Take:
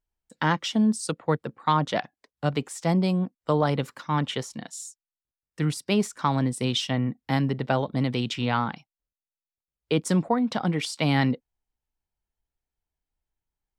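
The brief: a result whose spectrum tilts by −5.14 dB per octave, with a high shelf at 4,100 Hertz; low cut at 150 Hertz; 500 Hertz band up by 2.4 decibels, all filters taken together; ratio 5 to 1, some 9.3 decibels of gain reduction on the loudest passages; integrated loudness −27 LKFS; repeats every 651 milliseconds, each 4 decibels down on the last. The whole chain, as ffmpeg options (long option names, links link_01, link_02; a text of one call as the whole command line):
ffmpeg -i in.wav -af "highpass=150,equalizer=frequency=500:width_type=o:gain=3,highshelf=frequency=4100:gain=-4.5,acompressor=threshold=-28dB:ratio=5,aecho=1:1:651|1302|1953|2604|3255|3906|4557|5208|5859:0.631|0.398|0.25|0.158|0.0994|0.0626|0.0394|0.0249|0.0157,volume=5.5dB" out.wav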